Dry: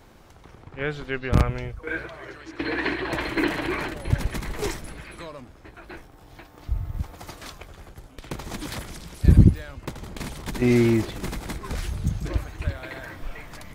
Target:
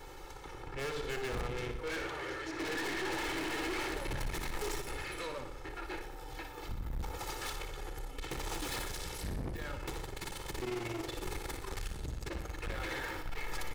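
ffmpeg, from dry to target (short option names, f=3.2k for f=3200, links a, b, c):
-filter_complex "[0:a]aeval=exprs='if(lt(val(0),0),0.708*val(0),val(0))':c=same,equalizer=f=87:t=o:w=1.1:g=-9,bandreject=f=50:t=h:w=6,bandreject=f=100:t=h:w=6,bandreject=f=150:t=h:w=6,bandreject=f=200:t=h:w=6,bandreject=f=250:t=h:w=6,bandreject=f=300:t=h:w=6,bandreject=f=350:t=h:w=6,bandreject=f=400:t=h:w=6,bandreject=f=450:t=h:w=6,aecho=1:1:2.3:0.99,acompressor=threshold=-24dB:ratio=4,asettb=1/sr,asplit=3[a][b][c];[a]atrim=end=10.004[d];[b]atrim=start=10:end=12.65,asetpts=PTS-STARTPTS,afade=t=in:d=0.004:c=qsin,afade=t=out:st=2.646:d=0.004:c=qsin,tremolo=f=22:d=0.974[e];[c]atrim=start=12.646[f];[d][e]acrossfade=d=0.004:c1=hsin:c2=qsin[g];[g][f]acrossfade=d=0.004:c1=qsin:c2=hsin,aeval=exprs='(tanh(89.1*val(0)+0.35)-tanh(0.35))/89.1':c=same,aecho=1:1:60|120|180|240|300|360|420:0.376|0.207|0.114|0.0625|0.0344|0.0189|0.0104,volume=3.5dB"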